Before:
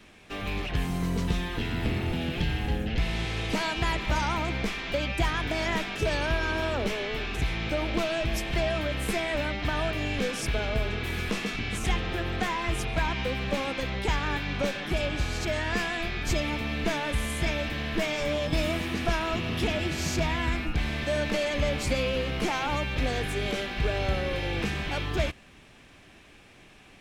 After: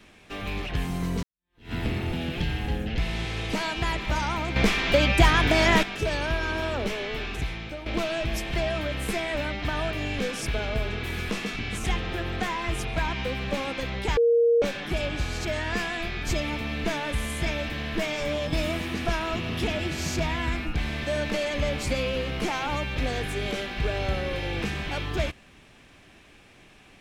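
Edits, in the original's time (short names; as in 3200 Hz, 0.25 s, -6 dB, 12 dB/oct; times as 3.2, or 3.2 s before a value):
1.23–1.73 fade in exponential
4.56–5.83 gain +8.5 dB
7.27–7.86 fade out, to -12 dB
14.17–14.62 bleep 468 Hz -16.5 dBFS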